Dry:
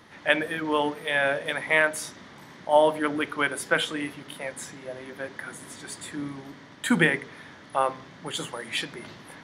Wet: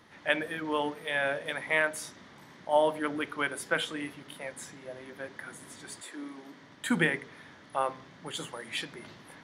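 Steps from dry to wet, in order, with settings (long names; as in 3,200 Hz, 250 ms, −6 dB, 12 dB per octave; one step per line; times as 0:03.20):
0:06.00–0:06.60: high-pass filter 360 Hz → 160 Hz 24 dB per octave
level −5.5 dB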